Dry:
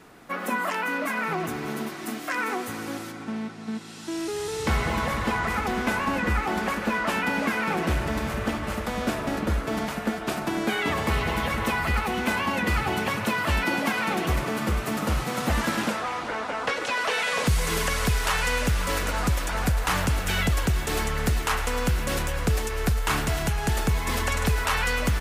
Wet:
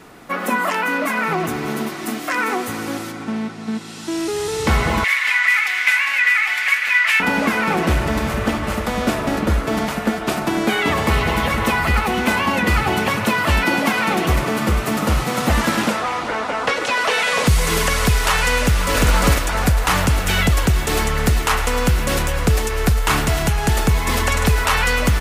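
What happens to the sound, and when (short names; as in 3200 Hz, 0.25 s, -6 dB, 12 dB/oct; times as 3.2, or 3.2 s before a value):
5.04–7.2 resonant high-pass 2100 Hz, resonance Q 4.2
18.59–19.03 echo throw 0.35 s, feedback 15%, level -0.5 dB
whole clip: notch 1600 Hz, Q 24; gain +7.5 dB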